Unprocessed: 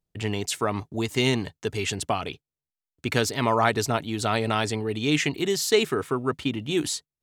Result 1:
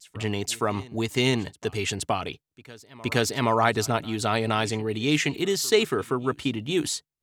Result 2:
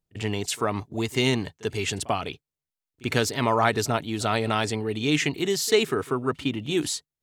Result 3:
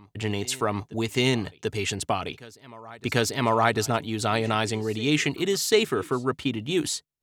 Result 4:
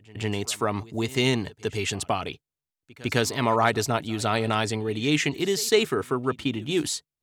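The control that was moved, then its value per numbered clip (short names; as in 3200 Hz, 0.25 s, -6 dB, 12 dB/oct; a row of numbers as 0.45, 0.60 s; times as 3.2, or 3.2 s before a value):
reverse echo, time: 470, 42, 741, 155 ms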